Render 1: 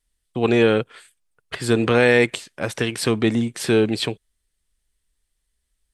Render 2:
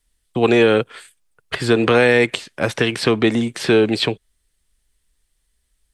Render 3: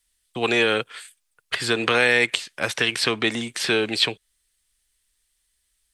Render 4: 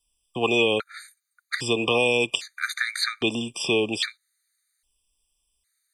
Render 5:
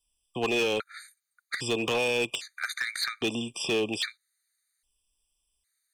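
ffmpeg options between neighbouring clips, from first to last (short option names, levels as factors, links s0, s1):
-filter_complex "[0:a]acrossover=split=290|5300[s0][s1][s2];[s0]acompressor=threshold=0.0398:ratio=4[s3];[s1]acompressor=threshold=0.141:ratio=4[s4];[s2]acompressor=threshold=0.00447:ratio=4[s5];[s3][s4][s5]amix=inputs=3:normalize=0,volume=2"
-af "tiltshelf=f=940:g=-7,volume=0.596"
-af "afftfilt=real='re*gt(sin(2*PI*0.62*pts/sr)*(1-2*mod(floor(b*sr/1024/1200),2)),0)':imag='im*gt(sin(2*PI*0.62*pts/sr)*(1-2*mod(floor(b*sr/1024/1200),2)),0)':win_size=1024:overlap=0.75"
-af "volume=8.41,asoftclip=hard,volume=0.119,volume=0.668"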